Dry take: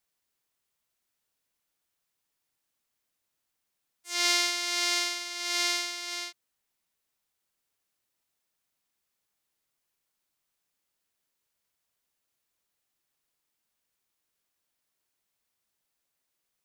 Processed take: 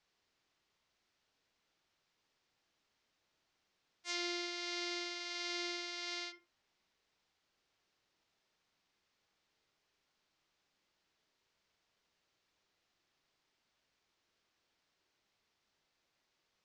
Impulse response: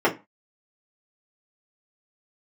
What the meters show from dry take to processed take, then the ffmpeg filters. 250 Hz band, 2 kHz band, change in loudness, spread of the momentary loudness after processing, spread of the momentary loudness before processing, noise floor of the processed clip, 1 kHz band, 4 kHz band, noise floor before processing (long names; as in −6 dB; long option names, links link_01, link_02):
−2.0 dB, −11.5 dB, −12.0 dB, 4 LU, 11 LU, −83 dBFS, −11.0 dB, −12.0 dB, −82 dBFS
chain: -filter_complex "[0:a]lowpass=frequency=5600:width=0.5412,lowpass=frequency=5600:width=1.3066,acrossover=split=320[link_01][link_02];[link_02]acompressor=threshold=-42dB:ratio=8[link_03];[link_01][link_03]amix=inputs=2:normalize=0,asplit=2[link_04][link_05];[1:a]atrim=start_sample=2205,adelay=46[link_06];[link_05][link_06]afir=irnorm=-1:irlink=0,volume=-26dB[link_07];[link_04][link_07]amix=inputs=2:normalize=0,volume=5dB"